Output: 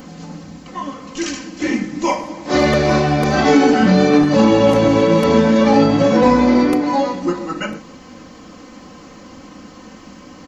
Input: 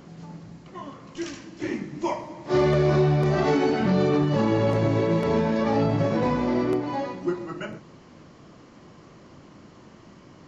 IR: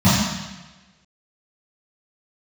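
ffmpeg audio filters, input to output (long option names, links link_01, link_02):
-af "highshelf=frequency=2800:gain=-9.5,crystalizer=i=4.5:c=0,aecho=1:1:3.9:0.76,volume=8dB"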